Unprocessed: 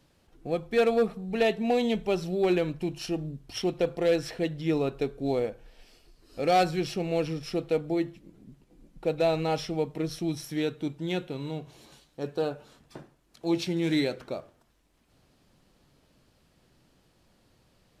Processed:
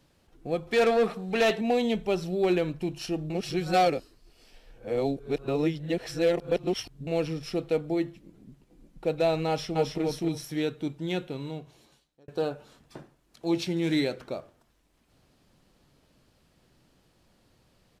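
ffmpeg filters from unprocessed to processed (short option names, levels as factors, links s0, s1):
-filter_complex "[0:a]asettb=1/sr,asplit=3[s0][s1][s2];[s0]atrim=end=0.674[s3];[s1]atrim=start=0.67:end=1.61,asetpts=PTS-STARTPTS,afade=t=in:d=0.004:c=qsin,afade=t=out:st=0.936:d=0.004:c=qsin,asplit=2[s4][s5];[s5]highpass=f=720:p=1,volume=6.31,asoftclip=type=tanh:threshold=0.15[s6];[s4][s6]amix=inputs=2:normalize=0,lowpass=f=6600:p=1,volume=0.501[s7];[s2]atrim=start=1.606[s8];[s3][s7]acrossfade=d=0.004:c1=hsin:c2=qsin[s9];[s9][s8]acrossfade=d=0.004:c1=qsin:c2=hsin,asplit=2[s10][s11];[s11]afade=t=in:st=9.48:d=0.01,afade=t=out:st=10.01:d=0.01,aecho=0:1:270|540|810:0.707946|0.106192|0.0159288[s12];[s10][s12]amix=inputs=2:normalize=0,asplit=4[s13][s14][s15][s16];[s13]atrim=end=3.302[s17];[s14]atrim=start=3.298:end=7.072,asetpts=PTS-STARTPTS,areverse[s18];[s15]atrim=start=7.068:end=12.28,asetpts=PTS-STARTPTS,afade=t=out:st=4.272:d=0.94[s19];[s16]atrim=start=12.28,asetpts=PTS-STARTPTS,afade=t=in:d=0.004:c=hsin[s20];[s17][s18]acrossfade=d=0.004:c1=hsin:c2=hsin[s21];[s19][s20]concat=n=2:v=0:a=1[s22];[s21][s22]acrossfade=d=0.004:c1=hsin:c2=hsin"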